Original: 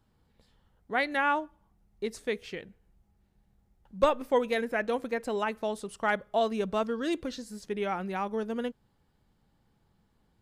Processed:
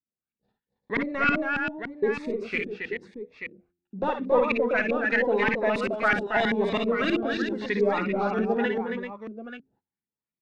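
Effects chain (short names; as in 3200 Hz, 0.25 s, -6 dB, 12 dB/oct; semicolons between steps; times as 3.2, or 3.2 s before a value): weighting filter D; gate -58 dBFS, range -37 dB; high shelf 3800 Hz +10.5 dB; notch 3100 Hz, Q 5; de-hum 87.76 Hz, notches 4; in parallel at -1 dB: compressor, threshold -34 dBFS, peak gain reduction 18 dB; on the sum: soft clip -20.5 dBFS, distortion -9 dB; LFO low-pass saw up 3.1 Hz 230–2500 Hz; tapped delay 55/60/274/389/885 ms -7/-11/-6/-7.5/-9.5 dB; cascading phaser rising 0.87 Hz; gain +2 dB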